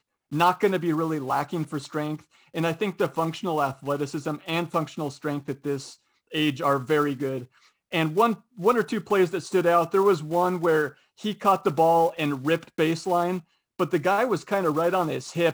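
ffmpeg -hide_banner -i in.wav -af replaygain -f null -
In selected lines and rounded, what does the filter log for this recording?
track_gain = +4.1 dB
track_peak = 0.305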